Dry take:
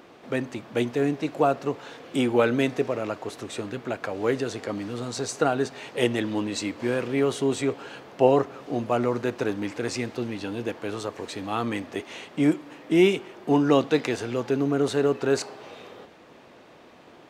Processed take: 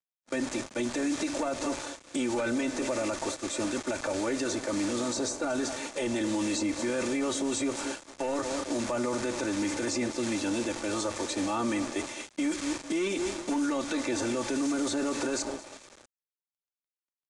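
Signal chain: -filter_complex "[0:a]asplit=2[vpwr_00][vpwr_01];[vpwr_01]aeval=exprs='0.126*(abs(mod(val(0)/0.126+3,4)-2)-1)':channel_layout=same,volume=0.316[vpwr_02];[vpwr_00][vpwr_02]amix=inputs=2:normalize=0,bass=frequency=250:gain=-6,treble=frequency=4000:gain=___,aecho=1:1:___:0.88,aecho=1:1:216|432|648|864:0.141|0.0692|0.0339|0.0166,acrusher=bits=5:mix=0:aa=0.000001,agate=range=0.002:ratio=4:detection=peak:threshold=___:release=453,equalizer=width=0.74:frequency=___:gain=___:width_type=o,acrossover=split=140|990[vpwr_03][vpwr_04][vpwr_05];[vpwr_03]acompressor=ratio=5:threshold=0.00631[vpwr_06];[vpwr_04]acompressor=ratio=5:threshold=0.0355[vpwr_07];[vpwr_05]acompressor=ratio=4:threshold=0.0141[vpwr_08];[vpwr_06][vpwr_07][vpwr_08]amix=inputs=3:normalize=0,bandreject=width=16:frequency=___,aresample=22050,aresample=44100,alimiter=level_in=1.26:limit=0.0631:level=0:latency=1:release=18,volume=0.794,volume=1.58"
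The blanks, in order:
0, 3.4, 0.0501, 6800, 8, 2900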